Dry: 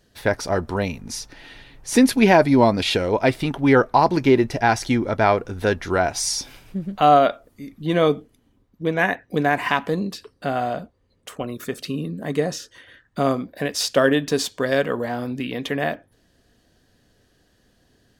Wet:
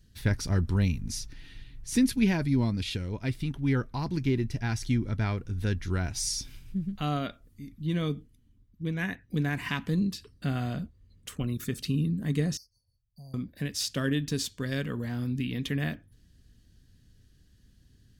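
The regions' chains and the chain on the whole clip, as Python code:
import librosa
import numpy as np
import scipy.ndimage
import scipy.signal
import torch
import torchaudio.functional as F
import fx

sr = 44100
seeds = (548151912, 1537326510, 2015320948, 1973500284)

y = fx.chain(x, sr, fx.brickwall_bandstop(low_hz=1100.0, high_hz=4300.0),
    fx.tone_stack(knobs='5-5-5'),
    fx.fixed_phaser(hz=1600.0, stages=8), at=(12.57, 13.34))
y = fx.tone_stack(y, sr, knobs='6-0-2')
y = fx.rider(y, sr, range_db=10, speed_s=2.0)
y = fx.low_shelf(y, sr, hz=300.0, db=9.0)
y = F.gain(torch.from_numpy(y), 6.5).numpy()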